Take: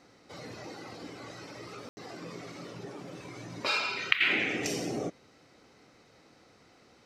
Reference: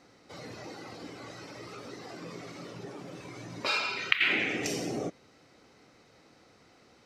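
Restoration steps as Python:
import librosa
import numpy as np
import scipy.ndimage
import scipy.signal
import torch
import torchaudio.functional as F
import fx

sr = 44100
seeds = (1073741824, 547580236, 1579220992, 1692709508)

y = fx.fix_ambience(x, sr, seeds[0], print_start_s=6.52, print_end_s=7.02, start_s=1.89, end_s=1.97)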